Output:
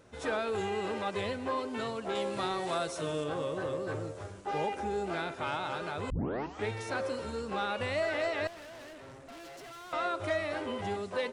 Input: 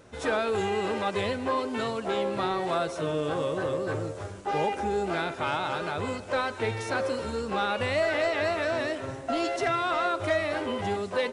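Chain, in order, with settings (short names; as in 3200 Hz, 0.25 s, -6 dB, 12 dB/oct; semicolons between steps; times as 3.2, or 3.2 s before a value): 2.15–3.24 high shelf 4400 Hz +11 dB; 6.1 tape start 0.57 s; 8.47–9.93 tube stage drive 41 dB, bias 0.8; gain -5.5 dB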